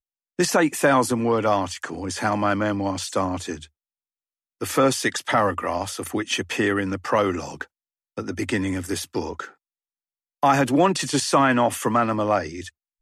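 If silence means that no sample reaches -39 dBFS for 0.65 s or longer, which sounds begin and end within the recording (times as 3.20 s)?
4.61–9.49 s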